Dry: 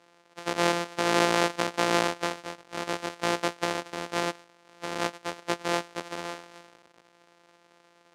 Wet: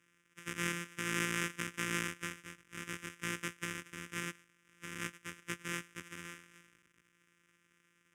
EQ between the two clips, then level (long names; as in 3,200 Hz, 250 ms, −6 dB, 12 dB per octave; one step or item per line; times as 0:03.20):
guitar amp tone stack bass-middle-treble 6-0-2
low-shelf EQ 390 Hz −3 dB
phaser with its sweep stopped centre 1,800 Hz, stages 4
+13.5 dB